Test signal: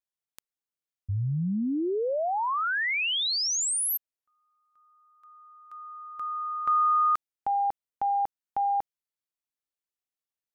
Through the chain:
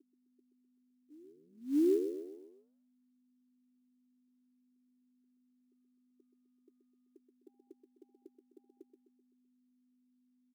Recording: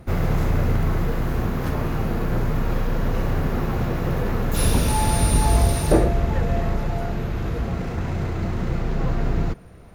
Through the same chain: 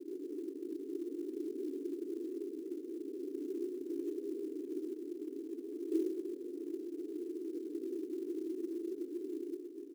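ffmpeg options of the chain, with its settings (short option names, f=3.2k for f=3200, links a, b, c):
-af "areverse,acompressor=threshold=-36dB:ratio=4:attack=0.41:release=24:knee=1:detection=rms,areverse,aeval=exprs='val(0)+0.00251*(sin(2*PI*50*n/s)+sin(2*PI*2*50*n/s)/2+sin(2*PI*3*50*n/s)/3+sin(2*PI*4*50*n/s)/4+sin(2*PI*5*50*n/s)/5)':c=same,asuperpass=centerf=340:order=8:qfactor=2.7,aecho=1:1:128|256|384|512|640:0.376|0.18|0.0866|0.0416|0.02,acrusher=bits=7:mode=log:mix=0:aa=0.000001,volume=9dB"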